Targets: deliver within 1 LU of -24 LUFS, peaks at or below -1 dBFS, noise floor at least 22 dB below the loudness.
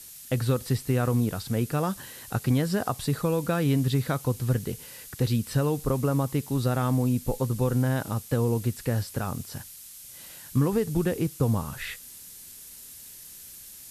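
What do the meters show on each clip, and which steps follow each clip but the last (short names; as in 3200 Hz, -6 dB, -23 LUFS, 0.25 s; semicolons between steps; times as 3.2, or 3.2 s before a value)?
noise floor -46 dBFS; noise floor target -49 dBFS; loudness -27.0 LUFS; peak -11.5 dBFS; loudness target -24.0 LUFS
-> denoiser 6 dB, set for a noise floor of -46 dBFS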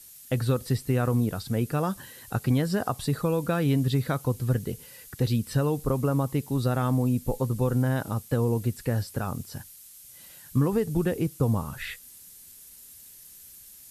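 noise floor -49 dBFS; noise floor target -50 dBFS
-> denoiser 6 dB, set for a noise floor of -49 dBFS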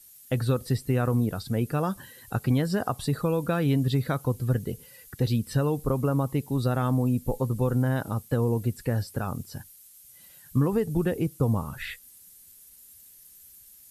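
noise floor -52 dBFS; loudness -27.5 LUFS; peak -12.0 dBFS; loudness target -24.0 LUFS
-> gain +3.5 dB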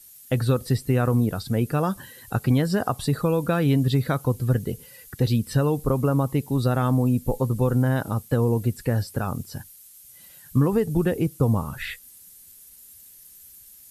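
loudness -24.0 LUFS; peak -8.5 dBFS; noise floor -49 dBFS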